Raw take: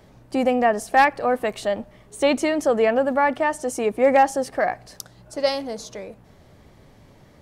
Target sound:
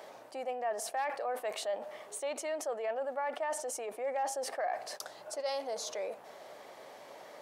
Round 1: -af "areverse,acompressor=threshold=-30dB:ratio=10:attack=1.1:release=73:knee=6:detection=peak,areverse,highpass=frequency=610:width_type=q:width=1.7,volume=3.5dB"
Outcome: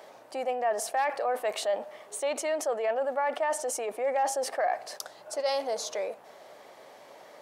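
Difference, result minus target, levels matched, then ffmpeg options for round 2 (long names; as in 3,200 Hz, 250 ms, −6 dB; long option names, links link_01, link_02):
downward compressor: peak gain reduction −7 dB
-af "areverse,acompressor=threshold=-37.5dB:ratio=10:attack=1.1:release=73:knee=6:detection=peak,areverse,highpass=frequency=610:width_type=q:width=1.7,volume=3.5dB"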